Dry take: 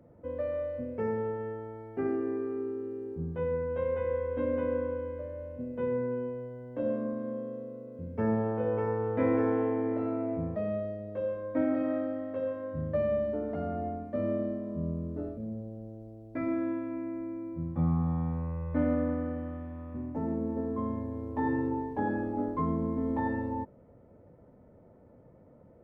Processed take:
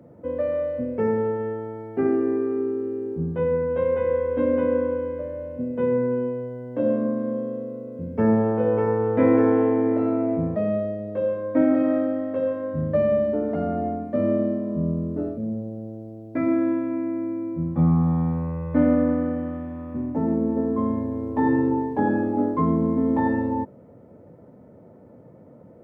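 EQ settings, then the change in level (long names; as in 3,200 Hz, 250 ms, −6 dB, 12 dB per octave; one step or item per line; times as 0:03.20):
high-pass filter 130 Hz 12 dB per octave
low-shelf EQ 430 Hz +5 dB
+6.5 dB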